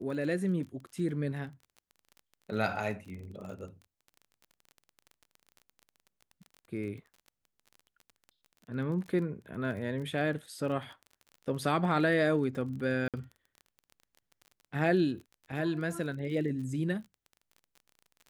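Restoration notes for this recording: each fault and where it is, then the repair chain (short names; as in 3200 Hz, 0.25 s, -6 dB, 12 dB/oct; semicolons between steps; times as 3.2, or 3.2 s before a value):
crackle 26/s -41 dBFS
13.08–13.14 gap 57 ms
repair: de-click; interpolate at 13.08, 57 ms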